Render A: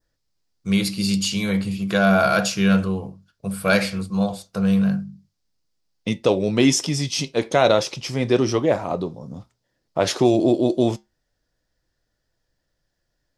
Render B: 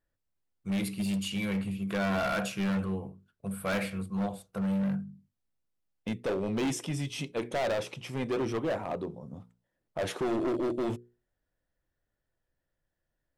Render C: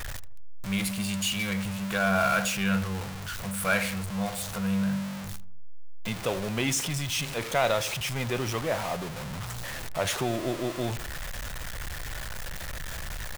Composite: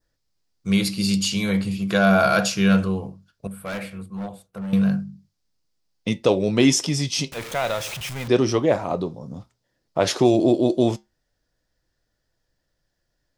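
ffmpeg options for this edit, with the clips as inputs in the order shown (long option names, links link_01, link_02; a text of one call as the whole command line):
ffmpeg -i take0.wav -i take1.wav -i take2.wav -filter_complex "[0:a]asplit=3[link_01][link_02][link_03];[link_01]atrim=end=3.472[link_04];[1:a]atrim=start=3.468:end=4.732[link_05];[link_02]atrim=start=4.728:end=7.322[link_06];[2:a]atrim=start=7.318:end=8.282[link_07];[link_03]atrim=start=8.278[link_08];[link_04][link_05]acrossfade=duration=0.004:curve1=hsin:curve2=hsin[link_09];[link_09][link_06]acrossfade=duration=0.004:curve1=hsin:curve2=hsin[link_10];[link_10][link_07]acrossfade=duration=0.004:curve1=hsin:curve2=hsin[link_11];[link_11][link_08]acrossfade=duration=0.004:curve1=hsin:curve2=hsin" out.wav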